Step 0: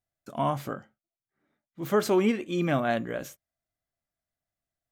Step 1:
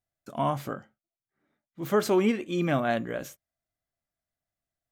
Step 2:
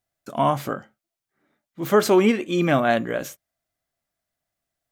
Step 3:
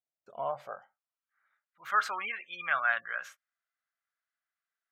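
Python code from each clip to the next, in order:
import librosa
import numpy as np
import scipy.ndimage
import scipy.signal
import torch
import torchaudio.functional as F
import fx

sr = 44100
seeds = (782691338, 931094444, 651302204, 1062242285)

y1 = x
y2 = fx.low_shelf(y1, sr, hz=150.0, db=-6.0)
y2 = y2 * librosa.db_to_amplitude(7.5)
y3 = fx.spec_gate(y2, sr, threshold_db=-30, keep='strong')
y3 = fx.filter_sweep_bandpass(y3, sr, from_hz=370.0, to_hz=1400.0, start_s=0.22, end_s=1.32, q=3.0)
y3 = fx.tone_stack(y3, sr, knobs='10-0-10')
y3 = y3 * librosa.db_to_amplitude(8.0)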